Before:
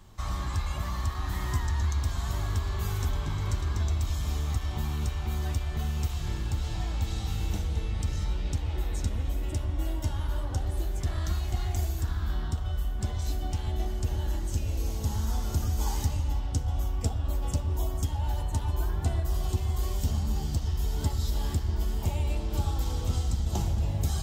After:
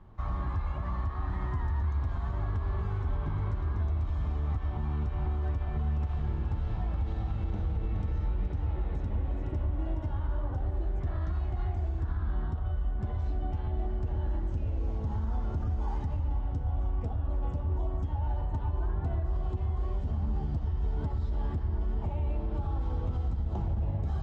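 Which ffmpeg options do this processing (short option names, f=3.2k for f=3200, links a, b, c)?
-filter_complex "[0:a]asettb=1/sr,asplit=3[a][b][c];[a]atrim=end=4.714[d];[b]atrim=start=4.71:end=10.06,asetpts=PTS-STARTPTS,afade=t=in:d=0.004:c=qsin,afade=t=out:st=5.346:d=0.004:c=qsin,aecho=1:1:420:0.473,atrim=end_sample=235935[e];[c]atrim=start=10.056[f];[d][e]acrossfade=d=0.004:c1=hsin:c2=qsin[g];[g][f]acrossfade=d=0.004:c1=qsin:c2=hsin,alimiter=limit=-22.5dB:level=0:latency=1:release=56,lowpass=1.4k"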